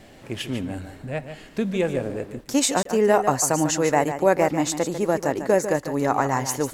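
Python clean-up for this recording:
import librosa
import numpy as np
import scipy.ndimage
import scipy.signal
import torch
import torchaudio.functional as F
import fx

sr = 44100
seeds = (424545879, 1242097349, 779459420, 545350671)

y = fx.fix_interpolate(x, sr, at_s=(2.83,), length_ms=23.0)
y = fx.fix_echo_inverse(y, sr, delay_ms=147, level_db=-10.0)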